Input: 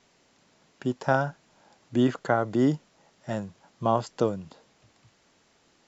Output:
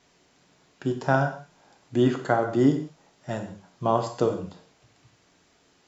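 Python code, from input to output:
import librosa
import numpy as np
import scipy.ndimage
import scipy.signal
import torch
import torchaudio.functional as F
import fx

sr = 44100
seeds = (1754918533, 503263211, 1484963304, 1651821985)

y = fx.rev_gated(x, sr, seeds[0], gate_ms=210, shape='falling', drr_db=4.0)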